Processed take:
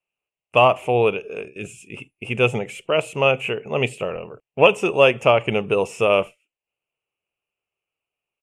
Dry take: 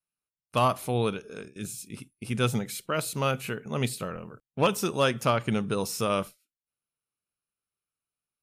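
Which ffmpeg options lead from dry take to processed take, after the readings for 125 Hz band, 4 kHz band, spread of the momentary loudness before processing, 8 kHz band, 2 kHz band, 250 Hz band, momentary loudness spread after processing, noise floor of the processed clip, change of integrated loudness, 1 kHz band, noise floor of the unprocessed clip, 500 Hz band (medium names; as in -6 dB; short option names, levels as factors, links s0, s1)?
+2.0 dB, +6.5 dB, 14 LU, -5.0 dB, +12.0 dB, +2.0 dB, 18 LU, under -85 dBFS, +9.0 dB, +7.0 dB, under -85 dBFS, +11.0 dB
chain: -af "firequalizer=gain_entry='entry(140,0);entry(220,-3);entry(410,9);entry(710,10);entry(1500,-3);entry(2700,15);entry(4000,-16);entry(7400,-3);entry(15000,-28)':delay=0.05:min_phase=1,volume=1.26"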